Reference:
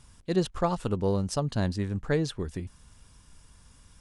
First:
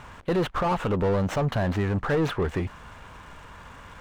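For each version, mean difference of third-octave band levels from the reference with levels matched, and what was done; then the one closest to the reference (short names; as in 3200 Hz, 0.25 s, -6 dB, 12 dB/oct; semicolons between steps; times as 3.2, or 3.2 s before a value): 8.0 dB: median filter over 9 samples; bell 250 Hz -5.5 dB 1.8 oct; limiter -25.5 dBFS, peak gain reduction 11 dB; overdrive pedal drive 24 dB, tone 1200 Hz, clips at -25 dBFS; gain +8.5 dB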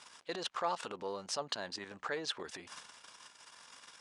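10.5 dB: level quantiser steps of 15 dB; transient shaper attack -8 dB, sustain +7 dB; compressor 6:1, threshold -40 dBFS, peak gain reduction 11.5 dB; BPF 690–5800 Hz; gain +13.5 dB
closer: first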